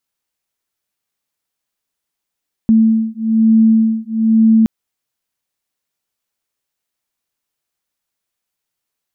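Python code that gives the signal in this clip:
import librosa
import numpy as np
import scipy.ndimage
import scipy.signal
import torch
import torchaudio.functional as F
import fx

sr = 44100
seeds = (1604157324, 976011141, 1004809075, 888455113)

y = fx.two_tone_beats(sr, length_s=1.97, hz=222.0, beat_hz=1.1, level_db=-12.0)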